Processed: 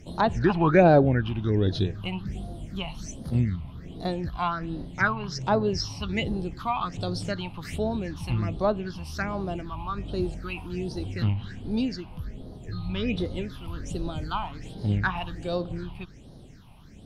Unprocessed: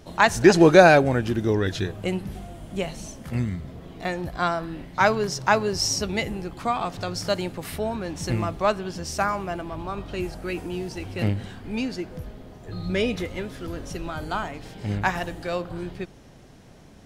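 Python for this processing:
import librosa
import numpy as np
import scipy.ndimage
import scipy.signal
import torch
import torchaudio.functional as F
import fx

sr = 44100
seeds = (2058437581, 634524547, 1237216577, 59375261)

y = fx.env_lowpass_down(x, sr, base_hz=2000.0, full_db=-16.5)
y = fx.phaser_stages(y, sr, stages=6, low_hz=430.0, high_hz=2200.0, hz=1.3, feedback_pct=50)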